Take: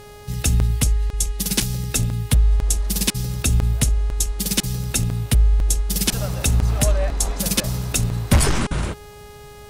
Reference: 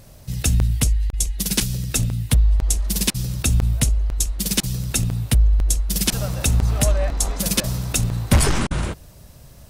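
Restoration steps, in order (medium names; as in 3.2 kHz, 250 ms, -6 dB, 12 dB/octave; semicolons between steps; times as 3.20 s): de-hum 415.1 Hz, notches 27; interpolate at 1.62 s, 3.3 ms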